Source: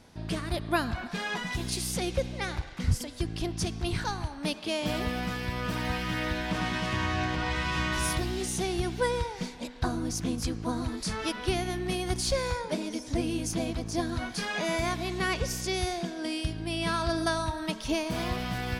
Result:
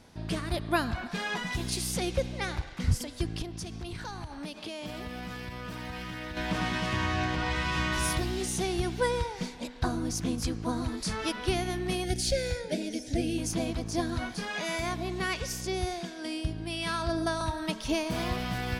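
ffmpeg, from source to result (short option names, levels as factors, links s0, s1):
-filter_complex "[0:a]asettb=1/sr,asplit=3[s0][s1][s2];[s0]atrim=end=3.424[s3];[s1]atrim=start=3.42:end=6.37,asetpts=PTS-STARTPTS,afade=t=in:d=0.004:c=qsin,afade=t=out:st=2.946:d=0.004:c=qsin,acompressor=threshold=0.0178:ratio=5:attack=3.2:release=140:knee=1:detection=peak[s4];[s2]atrim=start=6.366[s5];[s3][s4]acrossfade=d=0.004:c1=hsin:c2=qsin[s6];[s6][s5]acrossfade=d=0.004:c1=qsin:c2=hsin,asettb=1/sr,asplit=3[s7][s8][s9];[s7]atrim=end=12.044[s10];[s8]atrim=start=12.04:end=13.38,asetpts=PTS-STARTPTS,afade=t=in:d=0.004:c=qsin,afade=t=out:st=1.336:d=0.004:c=qsin,asuperstop=centerf=1100:order=4:qfactor=1.4[s11];[s9]atrim=start=13.376[s12];[s10][s11]acrossfade=d=0.004:c1=hsin:c2=qsin[s13];[s13][s12]acrossfade=d=0.004:c1=qsin:c2=hsin,asettb=1/sr,asplit=3[s14][s15][s16];[s14]atrim=end=14.344[s17];[s15]atrim=start=14.34:end=17.41,asetpts=PTS-STARTPTS,afade=t=in:d=0.004:c=qsin,afade=t=out:st=3.066:d=0.004:c=qsin,acrossover=split=1100[s18][s19];[s18]aeval=exprs='val(0)*(1-0.5/2+0.5/2*cos(2*PI*1.4*n/s))':c=same[s20];[s19]aeval=exprs='val(0)*(1-0.5/2-0.5/2*cos(2*PI*1.4*n/s))':c=same[s21];[s20][s21]amix=inputs=2:normalize=0[s22];[s16]atrim=start=17.406[s23];[s17][s22]acrossfade=d=0.004:c1=hsin:c2=qsin[s24];[s24][s23]acrossfade=d=0.004:c1=qsin:c2=hsin"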